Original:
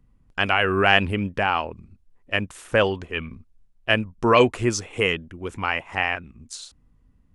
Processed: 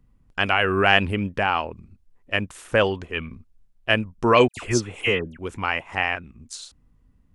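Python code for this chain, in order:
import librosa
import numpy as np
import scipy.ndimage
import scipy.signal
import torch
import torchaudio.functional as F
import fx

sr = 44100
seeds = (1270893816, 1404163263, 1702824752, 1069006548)

y = fx.dispersion(x, sr, late='lows', ms=89.0, hz=1800.0, at=(4.48, 5.39))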